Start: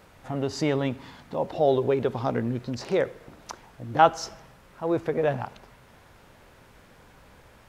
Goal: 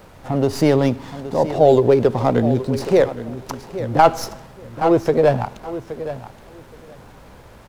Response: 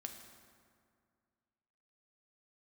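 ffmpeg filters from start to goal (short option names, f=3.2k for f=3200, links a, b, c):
-filter_complex "[0:a]aecho=1:1:821|1642:0.224|0.0358,acrossover=split=430|1100[a][b][c];[c]aeval=exprs='max(val(0),0)':c=same[d];[a][b][d]amix=inputs=3:normalize=0,alimiter=level_in=11dB:limit=-1dB:release=50:level=0:latency=1,volume=-1dB"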